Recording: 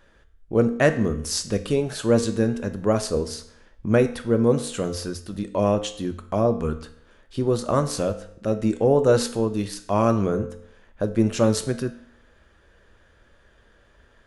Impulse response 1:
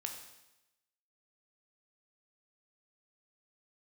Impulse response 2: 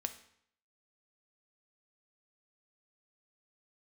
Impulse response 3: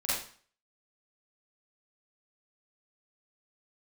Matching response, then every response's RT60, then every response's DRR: 2; 0.95, 0.65, 0.45 s; 3.0, 8.0, -10.5 dB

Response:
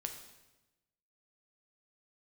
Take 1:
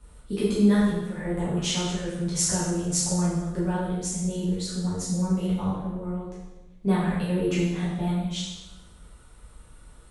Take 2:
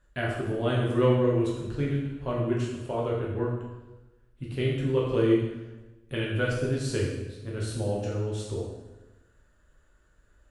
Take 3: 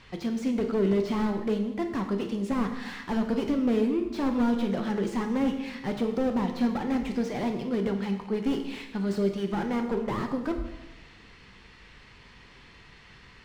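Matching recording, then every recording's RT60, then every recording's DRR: 3; 1.0, 1.0, 1.0 s; -9.5, -4.5, 4.5 dB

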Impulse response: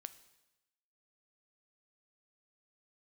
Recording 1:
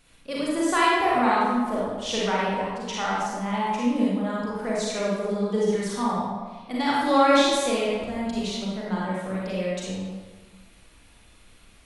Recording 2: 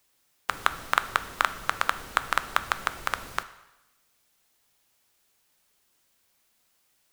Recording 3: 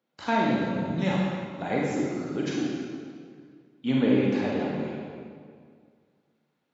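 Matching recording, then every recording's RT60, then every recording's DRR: 2; 1.4, 1.0, 2.0 s; -6.5, 12.0, -4.0 dB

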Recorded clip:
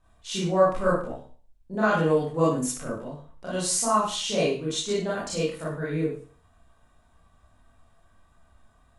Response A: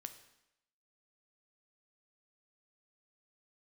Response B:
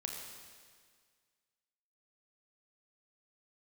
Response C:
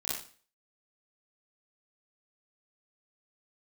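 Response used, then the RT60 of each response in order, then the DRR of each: C; 0.85, 1.8, 0.40 s; 8.5, 0.5, -8.5 dB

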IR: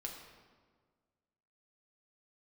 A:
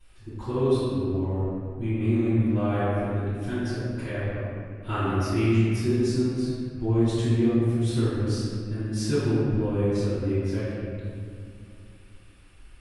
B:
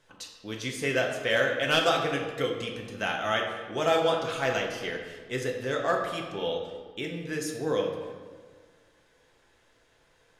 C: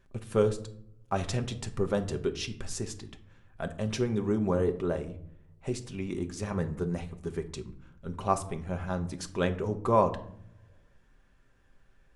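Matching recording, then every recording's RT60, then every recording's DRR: B; 2.4, 1.6, 0.65 s; -17.5, 0.0, 6.0 dB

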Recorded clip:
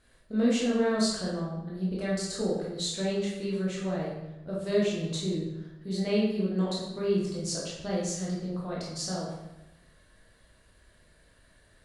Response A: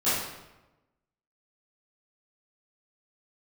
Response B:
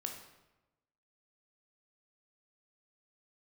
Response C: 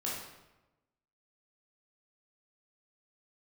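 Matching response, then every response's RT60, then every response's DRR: C; 1.0, 1.0, 1.0 s; -16.0, 2.0, -6.0 dB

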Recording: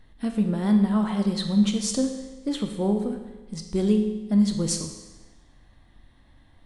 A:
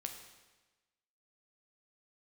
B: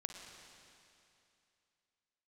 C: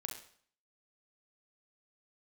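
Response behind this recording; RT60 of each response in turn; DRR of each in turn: A; 1.2, 2.7, 0.55 s; 4.0, 3.0, 2.5 dB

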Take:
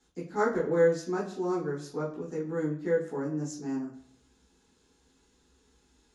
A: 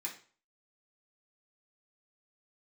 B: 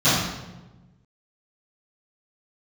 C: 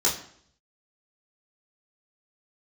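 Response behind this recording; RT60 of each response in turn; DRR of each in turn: C; 0.40, 1.1, 0.60 s; -4.0, -19.0, -6.0 dB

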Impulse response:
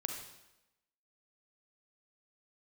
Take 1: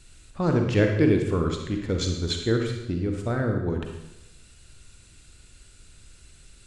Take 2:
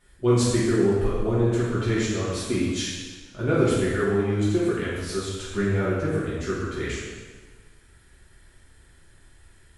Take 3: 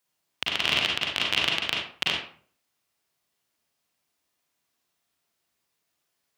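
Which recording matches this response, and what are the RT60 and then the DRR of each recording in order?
1; 0.95, 1.4, 0.50 s; 3.0, -9.0, -2.5 dB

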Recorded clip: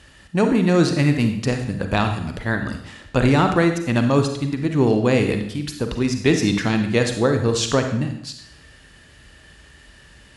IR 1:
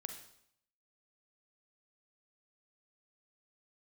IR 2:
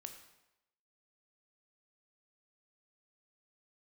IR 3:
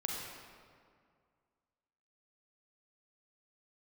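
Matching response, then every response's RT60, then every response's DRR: 1; 0.70, 0.90, 2.1 s; 5.5, 5.5, -1.5 dB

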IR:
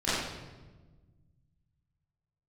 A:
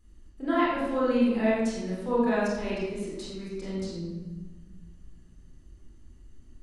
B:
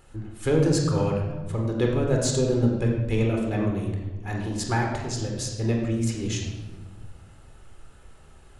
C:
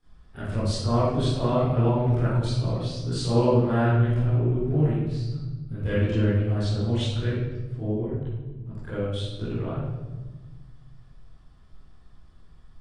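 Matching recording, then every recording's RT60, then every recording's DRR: C; 1.3, 1.3, 1.3 s; -7.5, 0.0, -14.5 dB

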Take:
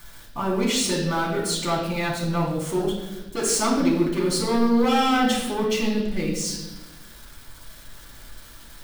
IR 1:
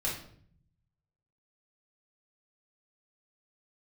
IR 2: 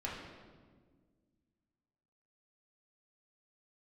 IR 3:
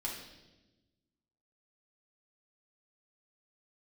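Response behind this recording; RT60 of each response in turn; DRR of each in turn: 3; 0.60, 1.6, 1.1 s; -5.5, -5.5, -4.0 dB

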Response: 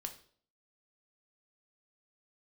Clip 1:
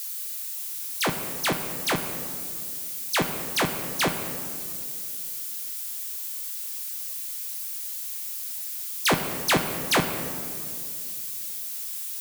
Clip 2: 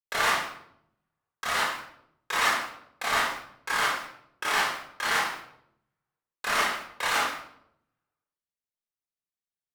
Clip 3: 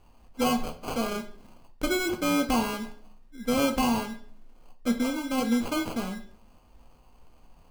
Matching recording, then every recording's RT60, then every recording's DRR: 3; 2.4, 0.70, 0.50 s; 5.0, -7.0, 4.5 dB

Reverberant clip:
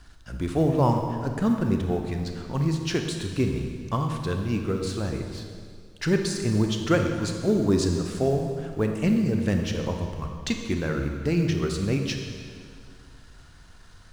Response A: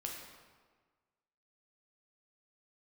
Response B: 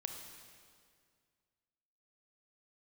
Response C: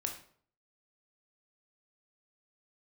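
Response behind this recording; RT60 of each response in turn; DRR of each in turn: B; 1.5, 2.1, 0.55 s; -0.5, 3.5, 2.5 dB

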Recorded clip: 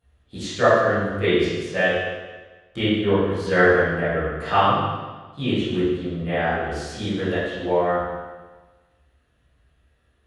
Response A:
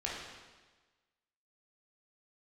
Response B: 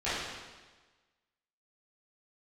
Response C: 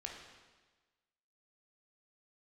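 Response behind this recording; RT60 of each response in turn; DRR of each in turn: B; 1.3, 1.3, 1.3 s; -5.0, -15.0, -0.5 dB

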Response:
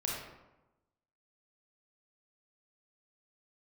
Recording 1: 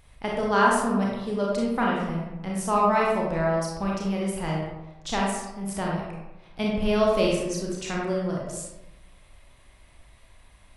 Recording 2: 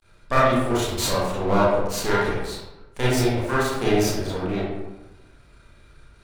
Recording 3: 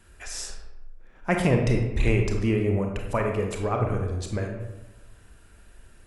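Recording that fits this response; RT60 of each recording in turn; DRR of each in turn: 1; 1.0, 1.0, 1.0 s; -3.5, -9.0, 2.0 dB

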